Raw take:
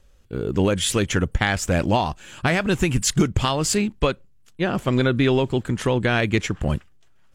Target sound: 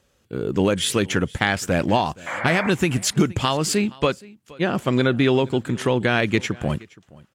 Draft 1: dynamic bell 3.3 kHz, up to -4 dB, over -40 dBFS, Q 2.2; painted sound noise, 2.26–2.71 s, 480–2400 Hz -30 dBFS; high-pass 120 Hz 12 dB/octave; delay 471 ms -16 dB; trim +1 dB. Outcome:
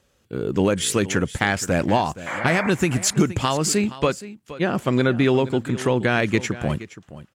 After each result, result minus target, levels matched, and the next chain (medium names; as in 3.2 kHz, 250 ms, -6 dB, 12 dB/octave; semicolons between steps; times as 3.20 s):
echo-to-direct +7 dB; 8 kHz band +3.0 dB
dynamic bell 3.3 kHz, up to -4 dB, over -40 dBFS, Q 2.2; painted sound noise, 2.26–2.71 s, 480–2400 Hz -30 dBFS; high-pass 120 Hz 12 dB/octave; delay 471 ms -23 dB; trim +1 dB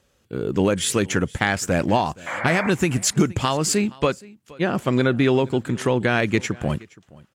8 kHz band +3.0 dB
dynamic bell 7.1 kHz, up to -4 dB, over -40 dBFS, Q 2.2; painted sound noise, 2.26–2.71 s, 480–2400 Hz -30 dBFS; high-pass 120 Hz 12 dB/octave; delay 471 ms -23 dB; trim +1 dB